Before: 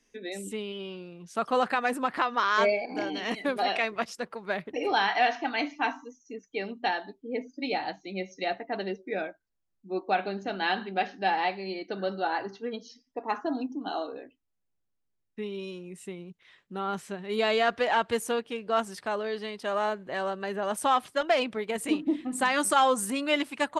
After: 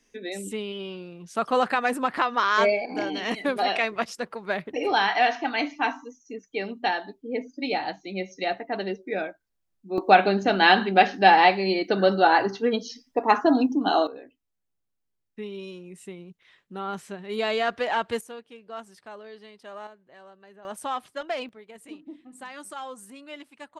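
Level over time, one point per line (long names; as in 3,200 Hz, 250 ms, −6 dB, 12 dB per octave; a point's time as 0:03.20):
+3 dB
from 0:09.98 +11 dB
from 0:14.07 −0.5 dB
from 0:18.21 −11.5 dB
from 0:19.87 −18.5 dB
from 0:20.65 −6 dB
from 0:21.49 −15 dB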